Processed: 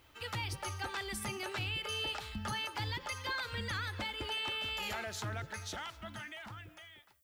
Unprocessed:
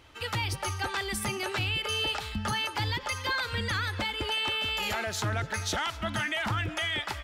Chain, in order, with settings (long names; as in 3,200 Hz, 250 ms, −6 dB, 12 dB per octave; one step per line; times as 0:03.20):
fade-out on the ending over 2.37 s
hum removal 83.5 Hz, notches 7
background noise violet −67 dBFS
level −7.5 dB